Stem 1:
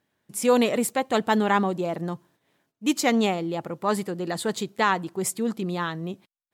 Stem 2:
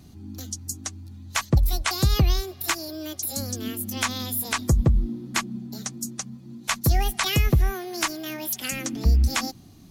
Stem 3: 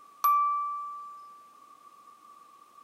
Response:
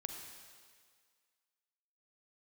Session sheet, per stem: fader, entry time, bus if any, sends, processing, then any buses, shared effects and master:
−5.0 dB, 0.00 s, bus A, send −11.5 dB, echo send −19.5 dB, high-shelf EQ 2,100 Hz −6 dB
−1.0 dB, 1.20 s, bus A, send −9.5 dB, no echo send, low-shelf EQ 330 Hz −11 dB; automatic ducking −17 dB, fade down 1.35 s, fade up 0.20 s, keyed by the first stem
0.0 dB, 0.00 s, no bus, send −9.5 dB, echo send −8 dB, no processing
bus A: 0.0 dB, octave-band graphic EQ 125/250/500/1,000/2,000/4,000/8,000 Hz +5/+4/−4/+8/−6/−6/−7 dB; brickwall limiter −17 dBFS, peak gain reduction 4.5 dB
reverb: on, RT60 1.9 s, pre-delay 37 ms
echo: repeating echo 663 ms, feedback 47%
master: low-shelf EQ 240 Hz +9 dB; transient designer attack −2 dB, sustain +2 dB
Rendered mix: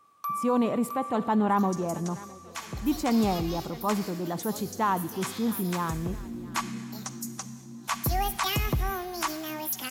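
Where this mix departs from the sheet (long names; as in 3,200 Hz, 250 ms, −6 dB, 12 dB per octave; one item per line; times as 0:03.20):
stem 3 0.0 dB → −9.0 dB
master: missing low-shelf EQ 240 Hz +9 dB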